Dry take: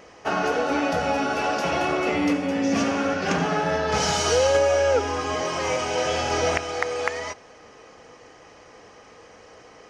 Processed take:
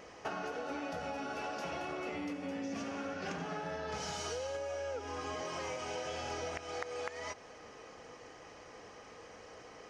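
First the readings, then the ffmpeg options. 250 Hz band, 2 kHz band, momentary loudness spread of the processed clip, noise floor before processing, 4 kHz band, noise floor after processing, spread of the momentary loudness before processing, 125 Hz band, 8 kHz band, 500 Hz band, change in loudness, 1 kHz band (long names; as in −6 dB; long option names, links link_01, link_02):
−16.5 dB, −16.0 dB, 13 LU, −49 dBFS, −16.0 dB, −54 dBFS, 7 LU, −16.5 dB, −16.5 dB, −17.0 dB, −16.5 dB, −16.0 dB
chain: -af "acompressor=threshold=-32dB:ratio=12,volume=-4.5dB"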